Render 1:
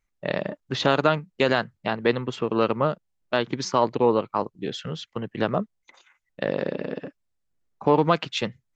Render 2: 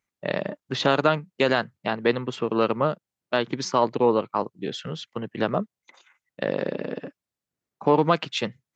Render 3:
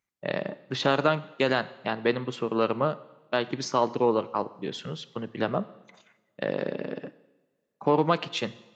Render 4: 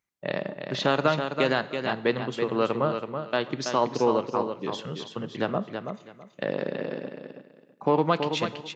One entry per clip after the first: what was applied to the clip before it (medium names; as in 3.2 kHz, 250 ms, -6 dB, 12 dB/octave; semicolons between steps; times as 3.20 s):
high-pass 110 Hz
two-slope reverb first 0.95 s, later 3.3 s, from -26 dB, DRR 14.5 dB; trim -3 dB
feedback delay 328 ms, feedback 21%, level -7 dB